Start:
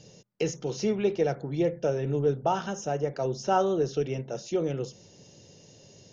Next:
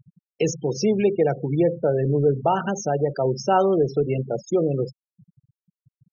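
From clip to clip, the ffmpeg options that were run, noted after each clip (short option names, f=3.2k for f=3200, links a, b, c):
-filter_complex "[0:a]afftfilt=real='re*gte(hypot(re,im),0.0224)':imag='im*gte(hypot(re,im),0.0224)':win_size=1024:overlap=0.75,asplit=2[a][b];[b]alimiter=level_in=0.5dB:limit=-24dB:level=0:latency=1:release=97,volume=-0.5dB,volume=1dB[c];[a][c]amix=inputs=2:normalize=0,volume=2.5dB"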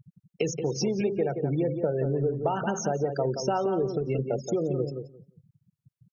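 -filter_complex "[0:a]acompressor=threshold=-24dB:ratio=6,asplit=2[a][b];[b]adelay=176,lowpass=f=1.5k:p=1,volume=-6.5dB,asplit=2[c][d];[d]adelay=176,lowpass=f=1.5k:p=1,volume=0.16,asplit=2[e][f];[f]adelay=176,lowpass=f=1.5k:p=1,volume=0.16[g];[c][e][g]amix=inputs=3:normalize=0[h];[a][h]amix=inputs=2:normalize=0"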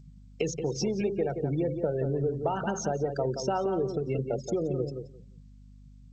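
-af "aeval=exprs='val(0)+0.00398*(sin(2*PI*50*n/s)+sin(2*PI*2*50*n/s)/2+sin(2*PI*3*50*n/s)/3+sin(2*PI*4*50*n/s)/4+sin(2*PI*5*50*n/s)/5)':c=same,volume=-2dB" -ar 16000 -c:a g722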